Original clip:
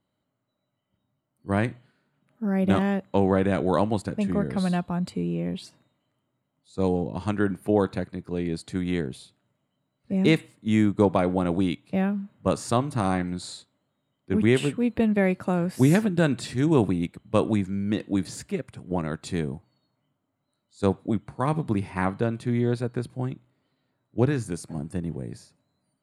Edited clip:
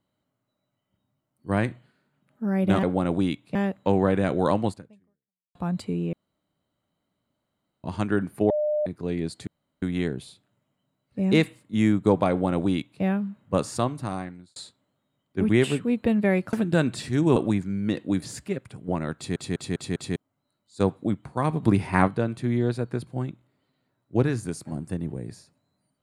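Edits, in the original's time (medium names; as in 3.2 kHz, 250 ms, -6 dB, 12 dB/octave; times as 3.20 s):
3.97–4.83 s: fade out exponential
5.41–7.12 s: room tone
7.78–8.14 s: bleep 602 Hz -21.5 dBFS
8.75 s: insert room tone 0.35 s
11.23–11.95 s: copy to 2.83 s
12.57–13.49 s: fade out
15.46–15.98 s: delete
16.81–17.39 s: delete
19.19 s: stutter in place 0.20 s, 5 plays
21.66–22.11 s: gain +5.5 dB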